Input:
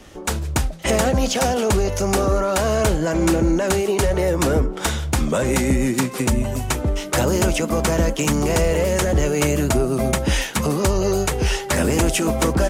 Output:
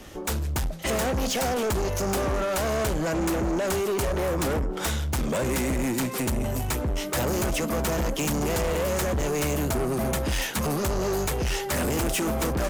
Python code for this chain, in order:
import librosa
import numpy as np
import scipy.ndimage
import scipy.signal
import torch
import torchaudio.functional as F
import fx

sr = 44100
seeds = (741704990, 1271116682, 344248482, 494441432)

y = fx.peak_eq(x, sr, hz=13000.0, db=9.0, octaves=0.25)
y = 10.0 ** (-23.0 / 20.0) * np.tanh(y / 10.0 ** (-23.0 / 20.0))